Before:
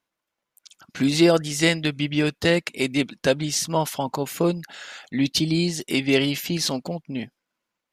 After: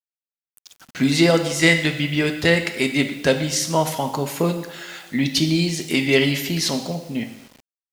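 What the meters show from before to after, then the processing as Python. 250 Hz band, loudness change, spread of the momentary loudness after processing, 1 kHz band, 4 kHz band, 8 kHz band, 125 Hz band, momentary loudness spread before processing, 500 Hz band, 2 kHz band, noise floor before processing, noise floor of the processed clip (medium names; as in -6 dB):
+2.0 dB, +3.0 dB, 12 LU, +2.5 dB, +2.5 dB, +2.5 dB, +3.5 dB, 13 LU, +2.0 dB, +6.0 dB, -84 dBFS, under -85 dBFS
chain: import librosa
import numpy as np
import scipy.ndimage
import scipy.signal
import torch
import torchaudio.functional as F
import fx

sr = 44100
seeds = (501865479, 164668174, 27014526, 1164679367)

y = fx.rev_double_slope(x, sr, seeds[0], early_s=0.91, late_s=2.3, knee_db=-18, drr_db=6.0)
y = fx.quant_dither(y, sr, seeds[1], bits=8, dither='none')
y = fx.dynamic_eq(y, sr, hz=2000.0, q=5.2, threshold_db=-45.0, ratio=4.0, max_db=6)
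y = y * 10.0 ** (1.5 / 20.0)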